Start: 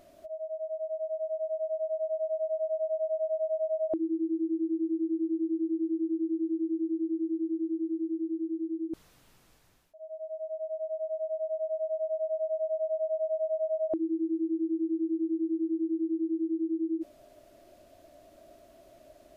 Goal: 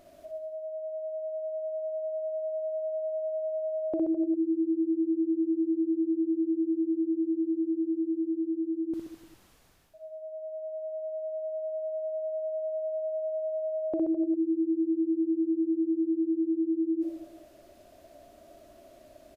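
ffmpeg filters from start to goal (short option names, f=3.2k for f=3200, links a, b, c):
-af "aecho=1:1:60|129|208.4|299.6|404.5:0.631|0.398|0.251|0.158|0.1"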